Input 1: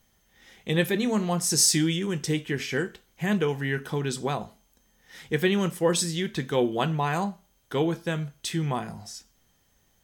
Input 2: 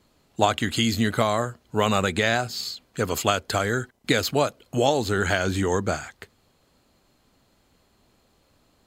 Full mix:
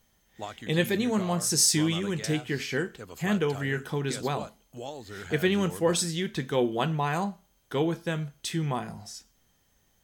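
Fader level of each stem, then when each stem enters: −1.5, −18.0 decibels; 0.00, 0.00 seconds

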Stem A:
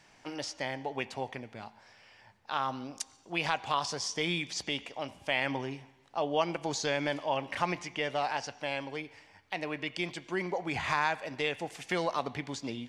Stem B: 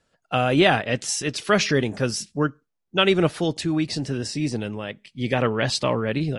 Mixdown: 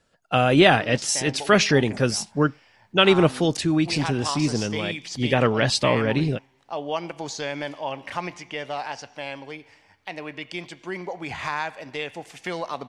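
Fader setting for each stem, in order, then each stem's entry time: +1.0, +2.0 decibels; 0.55, 0.00 seconds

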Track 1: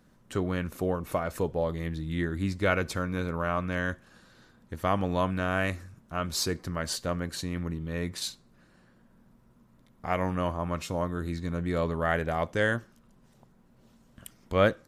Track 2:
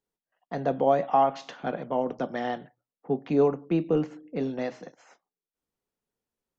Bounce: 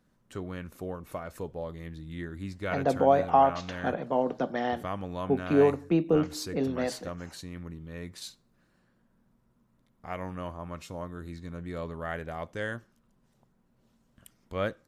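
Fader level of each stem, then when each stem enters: −8.0, +0.5 decibels; 0.00, 2.20 seconds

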